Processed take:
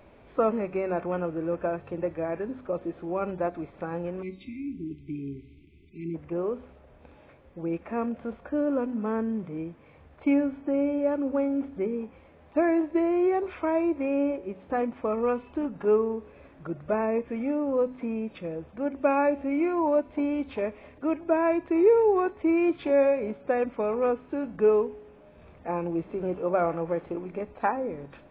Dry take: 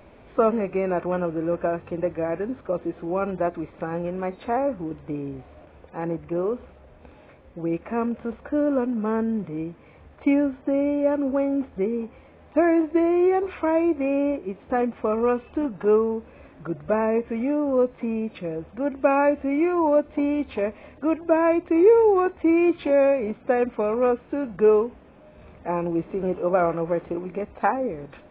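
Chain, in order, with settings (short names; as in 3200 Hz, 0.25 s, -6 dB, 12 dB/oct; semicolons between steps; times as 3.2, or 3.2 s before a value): spectral delete 4.22–6.15, 420–2000 Hz; resonator 140 Hz, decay 0.94 s, harmonics all, mix 40%; de-hum 63.27 Hz, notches 4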